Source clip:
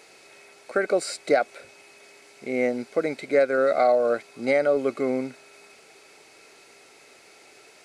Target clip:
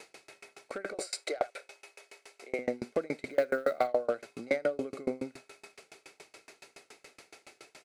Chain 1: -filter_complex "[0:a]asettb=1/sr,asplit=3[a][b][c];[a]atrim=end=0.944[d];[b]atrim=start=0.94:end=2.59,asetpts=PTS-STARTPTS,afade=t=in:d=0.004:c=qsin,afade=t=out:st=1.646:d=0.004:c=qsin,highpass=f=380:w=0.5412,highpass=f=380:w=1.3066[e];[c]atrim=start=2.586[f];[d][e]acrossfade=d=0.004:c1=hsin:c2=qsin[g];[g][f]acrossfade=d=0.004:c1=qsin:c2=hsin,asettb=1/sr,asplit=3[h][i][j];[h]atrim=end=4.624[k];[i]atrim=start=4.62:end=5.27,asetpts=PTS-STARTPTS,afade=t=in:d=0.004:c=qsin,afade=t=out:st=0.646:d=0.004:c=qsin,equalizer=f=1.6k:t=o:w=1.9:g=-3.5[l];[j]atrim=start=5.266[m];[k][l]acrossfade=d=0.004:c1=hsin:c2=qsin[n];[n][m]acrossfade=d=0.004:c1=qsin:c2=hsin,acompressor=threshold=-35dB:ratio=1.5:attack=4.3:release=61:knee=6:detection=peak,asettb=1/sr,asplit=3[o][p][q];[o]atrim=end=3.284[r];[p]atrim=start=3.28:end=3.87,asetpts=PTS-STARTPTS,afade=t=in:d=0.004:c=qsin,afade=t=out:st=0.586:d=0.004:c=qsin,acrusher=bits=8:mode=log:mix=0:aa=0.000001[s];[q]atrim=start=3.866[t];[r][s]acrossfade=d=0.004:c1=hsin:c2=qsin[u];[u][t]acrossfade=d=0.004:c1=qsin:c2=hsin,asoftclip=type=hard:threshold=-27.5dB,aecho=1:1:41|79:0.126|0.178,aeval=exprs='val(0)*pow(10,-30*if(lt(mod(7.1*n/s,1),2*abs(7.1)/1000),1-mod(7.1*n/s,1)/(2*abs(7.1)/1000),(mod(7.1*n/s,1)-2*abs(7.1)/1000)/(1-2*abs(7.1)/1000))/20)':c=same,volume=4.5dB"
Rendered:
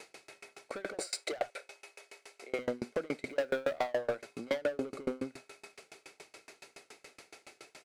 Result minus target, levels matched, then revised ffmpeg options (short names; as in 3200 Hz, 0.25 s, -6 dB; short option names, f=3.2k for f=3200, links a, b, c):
hard clip: distortion +17 dB
-filter_complex "[0:a]asettb=1/sr,asplit=3[a][b][c];[a]atrim=end=0.944[d];[b]atrim=start=0.94:end=2.59,asetpts=PTS-STARTPTS,afade=t=in:d=0.004:c=qsin,afade=t=out:st=1.646:d=0.004:c=qsin,highpass=f=380:w=0.5412,highpass=f=380:w=1.3066[e];[c]atrim=start=2.586[f];[d][e]acrossfade=d=0.004:c1=hsin:c2=qsin[g];[g][f]acrossfade=d=0.004:c1=qsin:c2=hsin,asettb=1/sr,asplit=3[h][i][j];[h]atrim=end=4.624[k];[i]atrim=start=4.62:end=5.27,asetpts=PTS-STARTPTS,afade=t=in:d=0.004:c=qsin,afade=t=out:st=0.646:d=0.004:c=qsin,equalizer=f=1.6k:t=o:w=1.9:g=-3.5[l];[j]atrim=start=5.266[m];[k][l]acrossfade=d=0.004:c1=hsin:c2=qsin[n];[n][m]acrossfade=d=0.004:c1=qsin:c2=hsin,acompressor=threshold=-35dB:ratio=1.5:attack=4.3:release=61:knee=6:detection=peak,asettb=1/sr,asplit=3[o][p][q];[o]atrim=end=3.284[r];[p]atrim=start=3.28:end=3.87,asetpts=PTS-STARTPTS,afade=t=in:d=0.004:c=qsin,afade=t=out:st=0.586:d=0.004:c=qsin,acrusher=bits=8:mode=log:mix=0:aa=0.000001[s];[q]atrim=start=3.866[t];[r][s]acrossfade=d=0.004:c1=hsin:c2=qsin[u];[u][t]acrossfade=d=0.004:c1=qsin:c2=hsin,asoftclip=type=hard:threshold=-20dB,aecho=1:1:41|79:0.126|0.178,aeval=exprs='val(0)*pow(10,-30*if(lt(mod(7.1*n/s,1),2*abs(7.1)/1000),1-mod(7.1*n/s,1)/(2*abs(7.1)/1000),(mod(7.1*n/s,1)-2*abs(7.1)/1000)/(1-2*abs(7.1)/1000))/20)':c=same,volume=4.5dB"